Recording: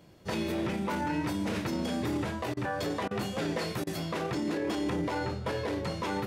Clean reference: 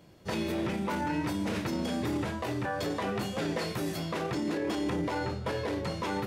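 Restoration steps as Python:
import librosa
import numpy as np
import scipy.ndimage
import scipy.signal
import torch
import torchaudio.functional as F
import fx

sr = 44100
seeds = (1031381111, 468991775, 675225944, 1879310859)

y = fx.fix_interpolate(x, sr, at_s=(2.54, 3.08, 3.84), length_ms=28.0)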